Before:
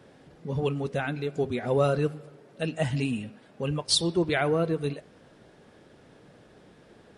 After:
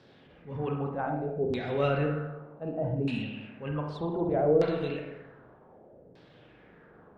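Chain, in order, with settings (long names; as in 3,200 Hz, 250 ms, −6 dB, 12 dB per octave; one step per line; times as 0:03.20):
transient designer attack −8 dB, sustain +2 dB
spring reverb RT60 1.1 s, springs 40/57 ms, chirp 20 ms, DRR 1.5 dB
auto-filter low-pass saw down 0.65 Hz 450–4,800 Hz
level −4.5 dB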